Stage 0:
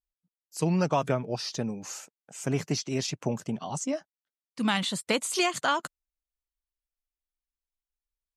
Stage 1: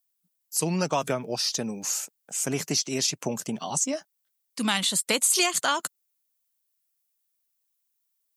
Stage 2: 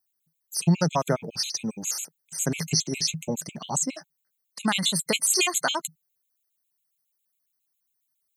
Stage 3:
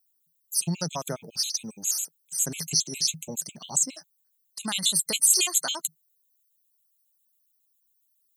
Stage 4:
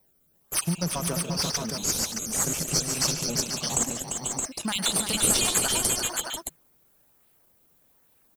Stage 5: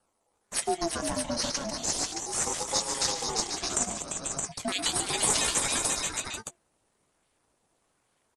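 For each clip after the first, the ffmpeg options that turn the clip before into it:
-filter_complex "[0:a]highpass=160,aemphasis=mode=production:type=75kf,asplit=2[a][b];[b]acompressor=threshold=-31dB:ratio=6,volume=0dB[c];[a][c]amix=inputs=2:normalize=0,volume=-3dB"
-af "equalizer=f=160:w=5.8:g=13,afftfilt=real='re*gt(sin(2*PI*7.3*pts/sr)*(1-2*mod(floor(b*sr/1024/2100),2)),0)':imag='im*gt(sin(2*PI*7.3*pts/sr)*(1-2*mod(floor(b*sr/1024/2100),2)),0)':win_size=1024:overlap=0.75,volume=2.5dB"
-af "aexciter=amount=3.6:drive=3.7:freq=3k,volume=-8.5dB"
-filter_complex "[0:a]asplit=2[a][b];[b]acrusher=samples=28:mix=1:aa=0.000001:lfo=1:lforange=44.8:lforate=1.2,volume=-7.5dB[c];[a][c]amix=inputs=2:normalize=0,acompressor=threshold=-38dB:ratio=1.5,aecho=1:1:105|144|345|490|498|620:0.15|0.266|0.447|0.422|0.266|0.562,volume=4dB"
-filter_complex "[0:a]asplit=2[a][b];[b]adelay=18,volume=-12dB[c];[a][c]amix=inputs=2:normalize=0,aresample=22050,aresample=44100,aeval=exprs='val(0)*sin(2*PI*550*n/s+550*0.25/0.35*sin(2*PI*0.35*n/s))':c=same"

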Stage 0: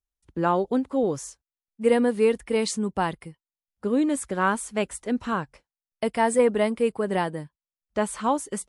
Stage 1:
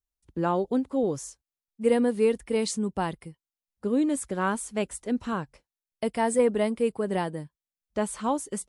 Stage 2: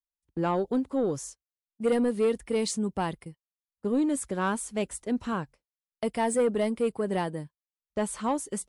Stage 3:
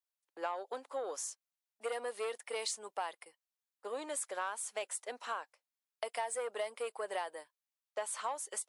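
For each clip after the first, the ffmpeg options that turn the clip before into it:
-af "equalizer=f=1.5k:t=o:w=2.4:g=-4.5,volume=-1dB"
-af "agate=range=-16dB:threshold=-44dB:ratio=16:detection=peak,asoftclip=type=tanh:threshold=-17.5dB"
-af "highpass=f=600:w=0.5412,highpass=f=600:w=1.3066,acompressor=threshold=-34dB:ratio=6"

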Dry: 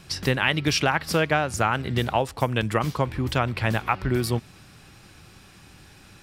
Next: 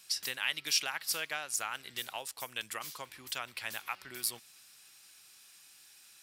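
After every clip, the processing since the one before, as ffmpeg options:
-af "aderivative"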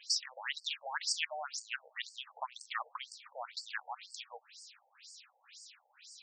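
-af "areverse,acompressor=mode=upward:threshold=-59dB:ratio=2.5,areverse,alimiter=level_in=3dB:limit=-24dB:level=0:latency=1:release=110,volume=-3dB,afftfilt=real='re*between(b*sr/1024,630*pow(6300/630,0.5+0.5*sin(2*PI*2*pts/sr))/1.41,630*pow(6300/630,0.5+0.5*sin(2*PI*2*pts/sr))*1.41)':imag='im*between(b*sr/1024,630*pow(6300/630,0.5+0.5*sin(2*PI*2*pts/sr))/1.41,630*pow(6300/630,0.5+0.5*sin(2*PI*2*pts/sr))*1.41)':win_size=1024:overlap=0.75,volume=8.5dB"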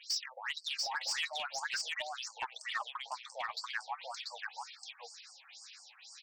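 -filter_complex "[0:a]asplit=2[a][b];[b]aecho=0:1:688:0.708[c];[a][c]amix=inputs=2:normalize=0,asplit=2[d][e];[e]highpass=f=720:p=1,volume=13dB,asoftclip=type=tanh:threshold=-19dB[f];[d][f]amix=inputs=2:normalize=0,lowpass=f=5.7k:p=1,volume=-6dB,flanger=delay=2.1:depth=7.3:regen=26:speed=0.43:shape=sinusoidal,volume=-1.5dB"

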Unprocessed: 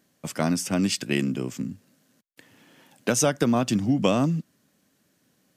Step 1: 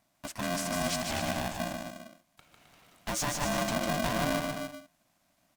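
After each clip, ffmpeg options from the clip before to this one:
-filter_complex "[0:a]volume=22dB,asoftclip=hard,volume=-22dB,asplit=2[a][b];[b]aecho=0:1:150|262.5|346.9|410.2|457.6:0.631|0.398|0.251|0.158|0.1[c];[a][c]amix=inputs=2:normalize=0,aeval=exprs='val(0)*sgn(sin(2*PI*440*n/s))':c=same,volume=-6.5dB"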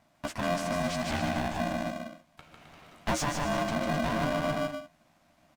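-filter_complex "[0:a]alimiter=level_in=6dB:limit=-24dB:level=0:latency=1:release=225,volume=-6dB,lowpass=f=2.5k:p=1,asplit=2[a][b];[b]adelay=13,volume=-8.5dB[c];[a][c]amix=inputs=2:normalize=0,volume=8dB"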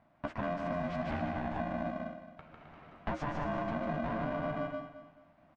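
-af "lowpass=1.8k,acompressor=threshold=-32dB:ratio=6,aecho=1:1:218|436|654:0.251|0.0804|0.0257"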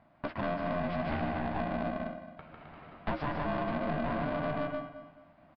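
-af "aeval=exprs='(tanh(35.5*val(0)+0.4)-tanh(0.4))/35.5':c=same,aresample=11025,aresample=44100,volume=5dB"

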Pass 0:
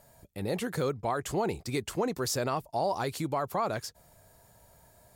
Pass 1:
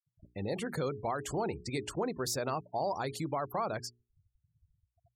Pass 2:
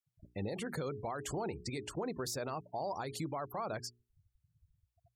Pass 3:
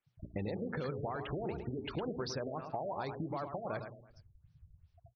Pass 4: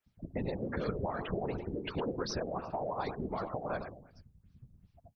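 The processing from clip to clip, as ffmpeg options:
-filter_complex "[0:a]afftfilt=real='re*gte(hypot(re,im),0.00891)':imag='im*gte(hypot(re,im),0.00891)':win_size=1024:overlap=0.75,bandreject=f=60:t=h:w=6,bandreject=f=120:t=h:w=6,bandreject=f=180:t=h:w=6,bandreject=f=240:t=h:w=6,bandreject=f=300:t=h:w=6,bandreject=f=360:t=h:w=6,bandreject=f=420:t=h:w=6,asplit=2[a][b];[b]acompressor=threshold=-39dB:ratio=6,volume=2dB[c];[a][c]amix=inputs=2:normalize=0,volume=-6dB"
-af "alimiter=level_in=5.5dB:limit=-24dB:level=0:latency=1:release=152,volume=-5.5dB"
-af "acompressor=threshold=-46dB:ratio=6,aecho=1:1:109|218|327|436:0.398|0.147|0.0545|0.0202,afftfilt=real='re*lt(b*sr/1024,670*pow(6400/670,0.5+0.5*sin(2*PI*2.7*pts/sr)))':imag='im*lt(b*sr/1024,670*pow(6400/670,0.5+0.5*sin(2*PI*2.7*pts/sr)))':win_size=1024:overlap=0.75,volume=10dB"
-af "afftfilt=real='hypot(re,im)*cos(2*PI*random(0))':imag='hypot(re,im)*sin(2*PI*random(1))':win_size=512:overlap=0.75,volume=8.5dB"

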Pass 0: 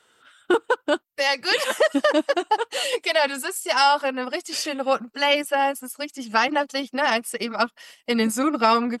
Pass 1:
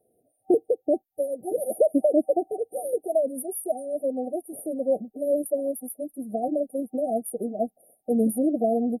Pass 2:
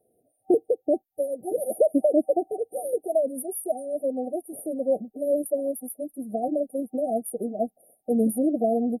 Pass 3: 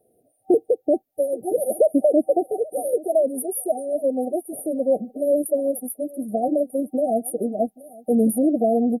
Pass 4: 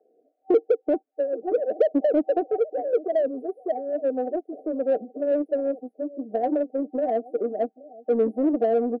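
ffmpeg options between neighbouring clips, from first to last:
-af "afftfilt=real='re*(1-between(b*sr/4096,770,9100))':imag='im*(1-between(b*sr/4096,770,9100))':win_size=4096:overlap=0.75"
-af anull
-filter_complex "[0:a]asplit=2[a][b];[b]alimiter=limit=-18.5dB:level=0:latency=1:release=17,volume=-2dB[c];[a][c]amix=inputs=2:normalize=0,aecho=1:1:826:0.0794"
-filter_complex "[0:a]highpass=f=250:w=0.5412,highpass=f=250:w=1.3066,equalizer=f=290:t=q:w=4:g=5,equalizer=f=450:t=q:w=4:g=8,equalizer=f=810:t=q:w=4:g=7,equalizer=f=1.5k:t=q:w=4:g=5,lowpass=f=2.5k:w=0.5412,lowpass=f=2.5k:w=1.3066,asplit=2[a][b];[b]asoftclip=type=tanh:threshold=-17.5dB,volume=-6.5dB[c];[a][c]amix=inputs=2:normalize=0,volume=-8.5dB"

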